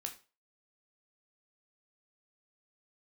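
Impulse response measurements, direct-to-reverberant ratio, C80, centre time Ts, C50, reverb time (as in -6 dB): 3.5 dB, 17.0 dB, 12 ms, 12.0 dB, 0.35 s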